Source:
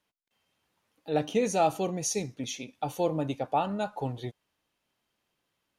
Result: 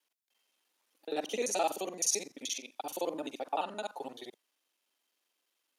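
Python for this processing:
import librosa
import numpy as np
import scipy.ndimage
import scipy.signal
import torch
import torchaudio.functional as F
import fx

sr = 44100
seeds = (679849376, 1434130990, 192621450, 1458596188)

y = fx.local_reverse(x, sr, ms=43.0)
y = scipy.signal.sosfilt(scipy.signal.butter(4, 270.0, 'highpass', fs=sr, output='sos'), y)
y = fx.high_shelf(y, sr, hz=2800.0, db=11.0)
y = y * librosa.db_to_amplitude(-6.5)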